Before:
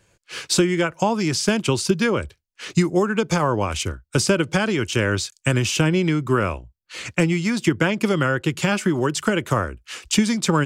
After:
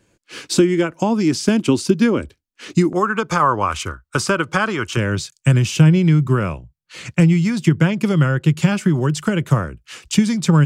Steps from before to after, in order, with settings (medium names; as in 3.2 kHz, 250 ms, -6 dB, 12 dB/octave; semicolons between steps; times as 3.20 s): peaking EQ 270 Hz +13 dB 0.83 oct, from 2.93 s 1.2 kHz, from 4.97 s 150 Hz; trim -2 dB